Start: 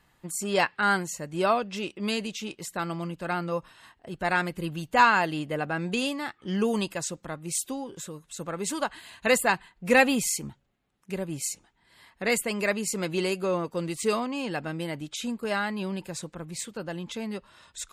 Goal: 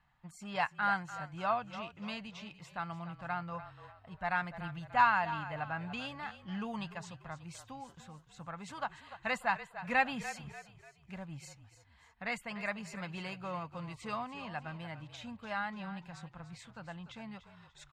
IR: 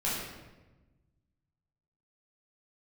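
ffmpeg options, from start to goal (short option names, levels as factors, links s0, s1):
-filter_complex "[0:a]firequalizer=gain_entry='entry(140,0);entry(380,-19);entry(740,1);entry(9900,-23)':delay=0.05:min_phase=1,asplit=5[s0][s1][s2][s3][s4];[s1]adelay=293,afreqshift=-36,volume=0.224[s5];[s2]adelay=586,afreqshift=-72,volume=0.0871[s6];[s3]adelay=879,afreqshift=-108,volume=0.0339[s7];[s4]adelay=1172,afreqshift=-144,volume=0.0133[s8];[s0][s5][s6][s7][s8]amix=inputs=5:normalize=0,volume=0.473"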